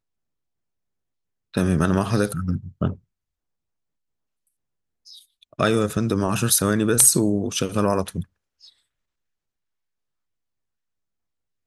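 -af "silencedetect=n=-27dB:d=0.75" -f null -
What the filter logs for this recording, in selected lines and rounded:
silence_start: 0.00
silence_end: 1.55 | silence_duration: 1.55
silence_start: 2.93
silence_end: 5.59 | silence_duration: 2.67
silence_start: 8.21
silence_end: 11.67 | silence_duration: 3.46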